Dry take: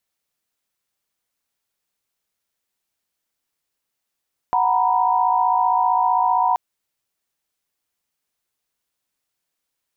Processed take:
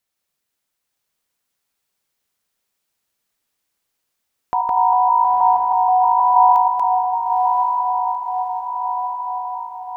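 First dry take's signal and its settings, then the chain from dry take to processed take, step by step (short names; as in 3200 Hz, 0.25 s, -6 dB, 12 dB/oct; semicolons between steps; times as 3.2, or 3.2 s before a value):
chord F#5/A#5/B5 sine, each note -19.5 dBFS 2.03 s
reverse delay 0.159 s, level -2 dB; on a send: diffused feedback echo 0.914 s, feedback 61%, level -3.5 dB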